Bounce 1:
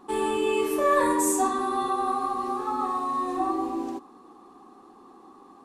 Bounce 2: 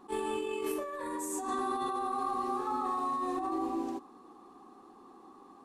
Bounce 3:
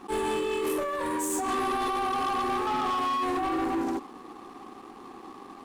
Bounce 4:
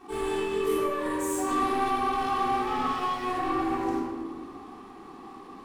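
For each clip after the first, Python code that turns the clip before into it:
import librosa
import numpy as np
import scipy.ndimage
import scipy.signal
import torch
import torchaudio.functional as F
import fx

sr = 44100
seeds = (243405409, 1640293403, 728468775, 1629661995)

y1 = fx.over_compress(x, sr, threshold_db=-28.0, ratio=-1.0)
y1 = fx.attack_slew(y1, sr, db_per_s=370.0)
y1 = y1 * 10.0 ** (-6.0 / 20.0)
y2 = fx.leveller(y1, sr, passes=3)
y2 = y2 * 10.0 ** (-1.0 / 20.0)
y3 = fx.room_shoebox(y2, sr, seeds[0], volume_m3=1300.0, walls='mixed', distance_m=3.5)
y3 = y3 * 10.0 ** (-7.5 / 20.0)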